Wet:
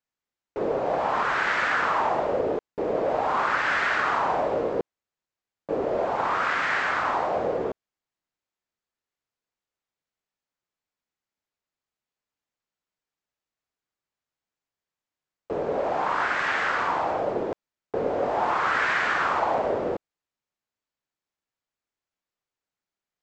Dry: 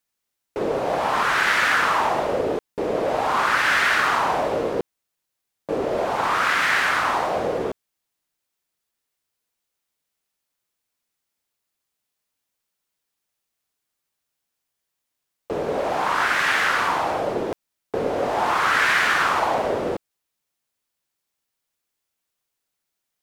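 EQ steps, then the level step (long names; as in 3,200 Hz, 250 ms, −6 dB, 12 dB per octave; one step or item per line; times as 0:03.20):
Chebyshev low-pass filter 7,900 Hz, order 8
dynamic equaliser 600 Hz, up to +3 dB, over −32 dBFS, Q 0.84
high-shelf EQ 3,000 Hz −9.5 dB
−3.5 dB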